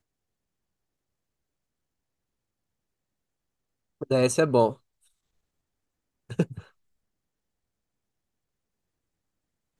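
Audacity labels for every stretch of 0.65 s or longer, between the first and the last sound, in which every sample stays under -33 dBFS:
4.730000	6.300000	silence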